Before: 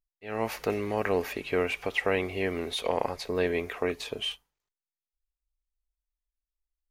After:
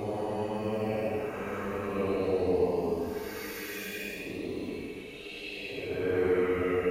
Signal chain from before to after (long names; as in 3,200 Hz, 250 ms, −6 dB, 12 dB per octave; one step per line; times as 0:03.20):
echo through a band-pass that steps 192 ms, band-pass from 180 Hz, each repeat 0.7 octaves, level −7.5 dB
auto-filter notch saw up 6.4 Hz 590–2,500 Hz
extreme stretch with random phases 9.6×, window 0.10 s, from 0:00.90
level −2 dB